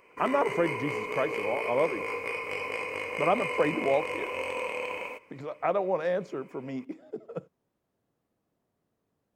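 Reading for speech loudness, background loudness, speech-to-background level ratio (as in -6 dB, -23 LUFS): -30.5 LUFS, -33.0 LUFS, 2.5 dB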